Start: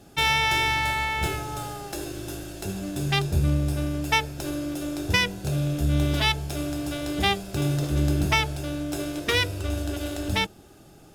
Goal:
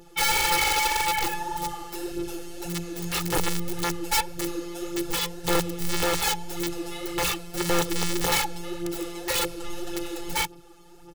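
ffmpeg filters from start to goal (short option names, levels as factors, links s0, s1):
-af "afftfilt=real='hypot(re,im)*cos(PI*b)':imag='0':win_size=1024:overlap=0.75,highshelf=f=4700:g=-2.5,aphaser=in_gain=1:out_gain=1:delay=4.9:decay=0.57:speed=1.8:type=sinusoidal,aeval=exprs='(mod(8.41*val(0)+1,2)-1)/8.41':c=same,aecho=1:1:2.3:0.76"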